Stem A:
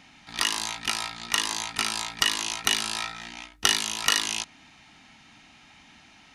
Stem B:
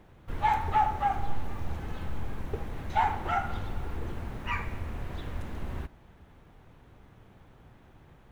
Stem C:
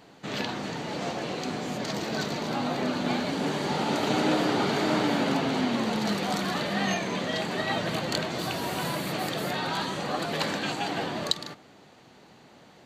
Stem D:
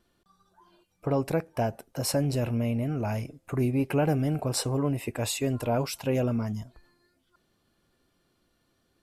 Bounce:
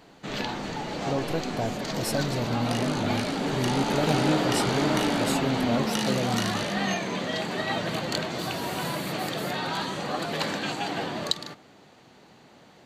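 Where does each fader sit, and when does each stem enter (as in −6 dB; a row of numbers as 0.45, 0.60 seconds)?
−11.5, −15.0, 0.0, −2.5 decibels; 2.30, 0.00, 0.00, 0.00 seconds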